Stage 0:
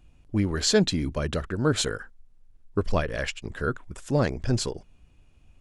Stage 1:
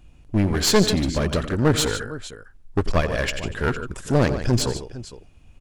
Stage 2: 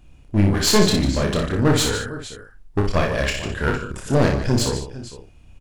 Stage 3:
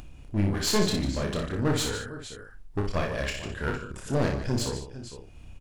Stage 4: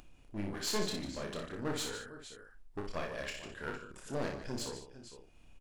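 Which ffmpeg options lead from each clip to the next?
-af "aecho=1:1:90|149|458:0.158|0.251|0.141,aeval=exprs='clip(val(0),-1,0.0447)':c=same,volume=6dB"
-af "aecho=1:1:29|60:0.596|0.531"
-af "acompressor=mode=upward:threshold=-25dB:ratio=2.5,volume=-8.5dB"
-af "equalizer=f=77:t=o:w=2.2:g=-11.5,volume=-8.5dB"

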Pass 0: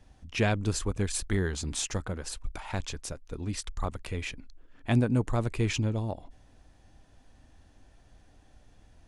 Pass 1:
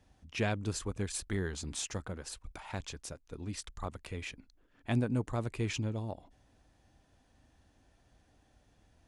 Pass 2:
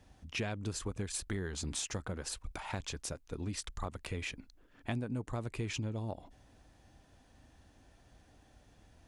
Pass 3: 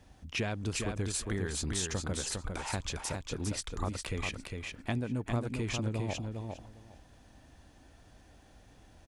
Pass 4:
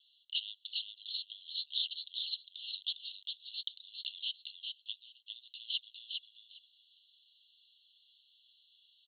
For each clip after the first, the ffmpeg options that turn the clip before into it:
-af "highpass=f=60:p=1,volume=-5.5dB"
-af "acompressor=threshold=-39dB:ratio=5,volume=4.5dB"
-af "aecho=1:1:405|810|1215:0.596|0.0953|0.0152,volume=3dB"
-af "asuperpass=centerf=3500:order=20:qfactor=2.3,volume=7.5dB"

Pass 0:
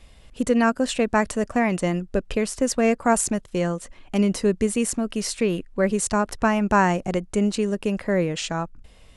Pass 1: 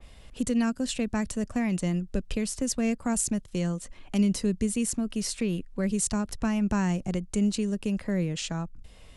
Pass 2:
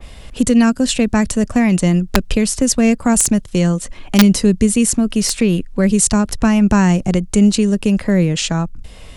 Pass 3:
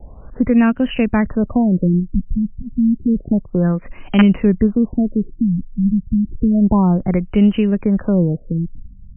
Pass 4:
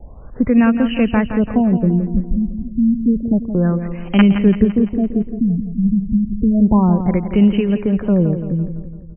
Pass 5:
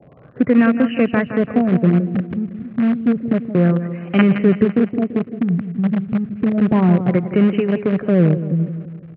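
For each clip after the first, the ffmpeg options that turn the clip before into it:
-filter_complex "[0:a]acrossover=split=240|3000[a][b][c];[b]acompressor=threshold=-45dB:ratio=2[d];[a][d][c]amix=inputs=3:normalize=0,adynamicequalizer=threshold=0.00447:dfrequency=2600:dqfactor=0.7:tfrequency=2600:tqfactor=0.7:attack=5:release=100:ratio=0.375:range=2:mode=cutabove:tftype=highshelf"
-af "aeval=exprs='(mod(5.96*val(0)+1,2)-1)/5.96':c=same,acontrast=31,volume=8.5dB"
-af "afftfilt=real='re*lt(b*sr/1024,230*pow(3200/230,0.5+0.5*sin(2*PI*0.3*pts/sr)))':imag='im*lt(b*sr/1024,230*pow(3200/230,0.5+0.5*sin(2*PI*0.3*pts/sr)))':win_size=1024:overlap=0.75,volume=-1dB"
-af "aecho=1:1:169|338|507|676|845|1014:0.335|0.174|0.0906|0.0471|0.0245|0.0127"
-filter_complex "[0:a]asplit=2[a][b];[b]acrusher=bits=3:dc=4:mix=0:aa=0.000001,volume=-10.5dB[c];[a][c]amix=inputs=2:normalize=0,highpass=f=120:w=0.5412,highpass=f=120:w=1.3066,equalizer=f=140:t=q:w=4:g=5,equalizer=f=210:t=q:w=4:g=-6,equalizer=f=910:t=q:w=4:g=-10,lowpass=f=2.5k:w=0.5412,lowpass=f=2.5k:w=1.3066"

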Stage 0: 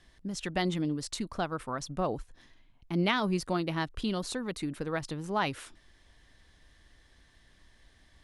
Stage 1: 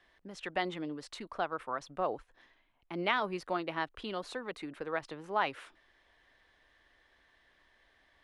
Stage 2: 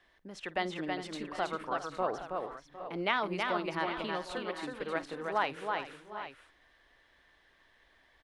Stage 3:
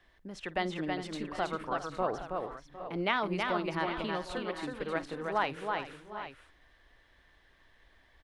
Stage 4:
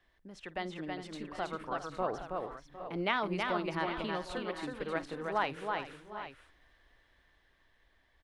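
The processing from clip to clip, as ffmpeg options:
-filter_complex "[0:a]acrossover=split=370 3300:gain=0.158 1 0.178[a][b][c];[a][b][c]amix=inputs=3:normalize=0"
-af "aecho=1:1:49|323|402|757|781|815:0.106|0.631|0.188|0.158|0.126|0.237"
-af "lowshelf=f=160:g=10"
-af "dynaudnorm=f=290:g=11:m=4.5dB,volume=-6dB"

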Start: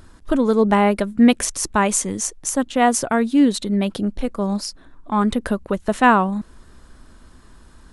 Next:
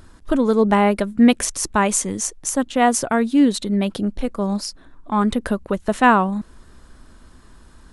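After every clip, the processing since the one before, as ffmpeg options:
-af anull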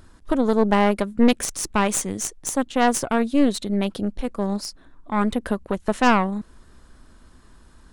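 -af "aeval=exprs='0.75*(cos(1*acos(clip(val(0)/0.75,-1,1)))-cos(1*PI/2))+0.168*(cos(4*acos(clip(val(0)/0.75,-1,1)))-cos(4*PI/2))+0.0266*(cos(5*acos(clip(val(0)/0.75,-1,1)))-cos(5*PI/2))':c=same,volume=-5dB"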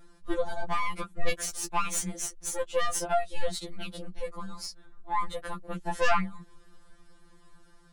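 -af "afftfilt=real='re*2.83*eq(mod(b,8),0)':imag='im*2.83*eq(mod(b,8),0)':win_size=2048:overlap=0.75,volume=-3.5dB"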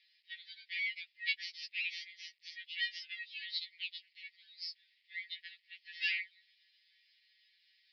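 -af "acrusher=bits=10:mix=0:aa=0.000001,asuperpass=centerf=3100:order=20:qfactor=0.95,volume=1.5dB"

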